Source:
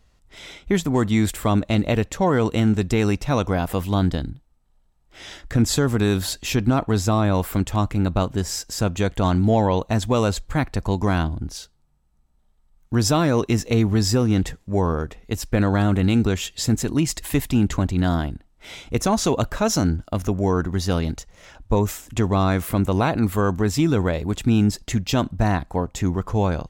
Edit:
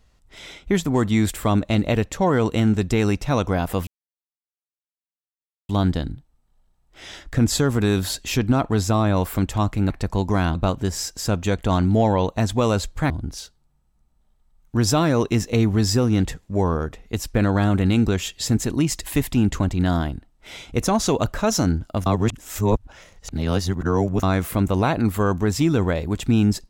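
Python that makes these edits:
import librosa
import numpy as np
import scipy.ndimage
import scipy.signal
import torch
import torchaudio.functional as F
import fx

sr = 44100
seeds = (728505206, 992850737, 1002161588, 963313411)

y = fx.edit(x, sr, fx.insert_silence(at_s=3.87, length_s=1.82),
    fx.move(start_s=10.63, length_s=0.65, to_s=8.08),
    fx.reverse_span(start_s=20.24, length_s=2.17), tone=tone)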